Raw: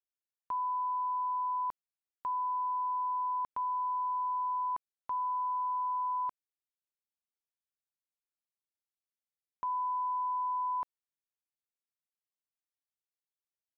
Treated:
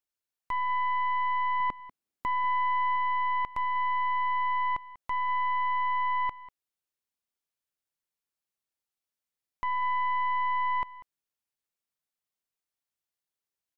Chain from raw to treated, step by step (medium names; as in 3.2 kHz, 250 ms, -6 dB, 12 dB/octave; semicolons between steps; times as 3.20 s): tracing distortion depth 0.1 ms; 1.60–2.96 s: peaking EQ 250 Hz +10.5 dB 1.7 oct; on a send: delay 193 ms -17 dB; on the sum: trim +3.5 dB